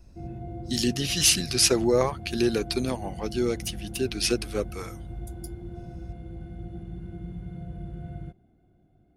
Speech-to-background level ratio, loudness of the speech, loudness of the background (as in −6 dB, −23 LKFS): 14.5 dB, −25.0 LKFS, −39.5 LKFS